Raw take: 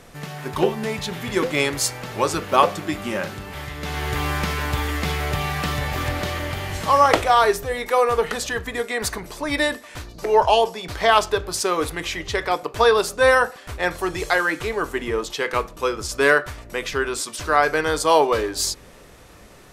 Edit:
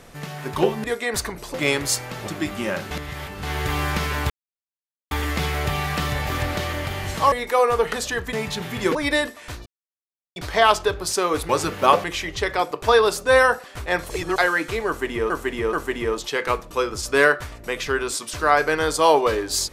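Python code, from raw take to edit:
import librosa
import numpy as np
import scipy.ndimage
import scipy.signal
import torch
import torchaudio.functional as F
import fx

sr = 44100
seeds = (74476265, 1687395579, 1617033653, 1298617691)

y = fx.edit(x, sr, fx.swap(start_s=0.84, length_s=0.62, other_s=8.72, other_length_s=0.7),
    fx.move(start_s=2.19, length_s=0.55, to_s=11.96),
    fx.reverse_span(start_s=3.38, length_s=0.52),
    fx.insert_silence(at_s=4.77, length_s=0.81),
    fx.cut(start_s=6.98, length_s=0.73),
    fx.silence(start_s=10.13, length_s=0.7),
    fx.reverse_span(start_s=14.02, length_s=0.26),
    fx.repeat(start_s=14.79, length_s=0.43, count=3), tone=tone)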